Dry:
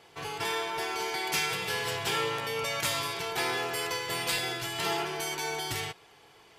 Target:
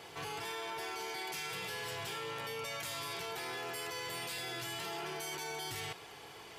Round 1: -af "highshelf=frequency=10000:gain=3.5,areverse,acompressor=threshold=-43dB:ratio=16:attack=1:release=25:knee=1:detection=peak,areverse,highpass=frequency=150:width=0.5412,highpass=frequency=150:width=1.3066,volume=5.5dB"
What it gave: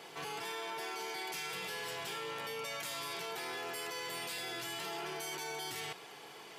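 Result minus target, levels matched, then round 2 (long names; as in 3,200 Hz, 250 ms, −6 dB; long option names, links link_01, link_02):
125 Hz band −5.5 dB
-af "highshelf=frequency=10000:gain=3.5,areverse,acompressor=threshold=-43dB:ratio=16:attack=1:release=25:knee=1:detection=peak,areverse,highpass=frequency=39:width=0.5412,highpass=frequency=39:width=1.3066,volume=5.5dB"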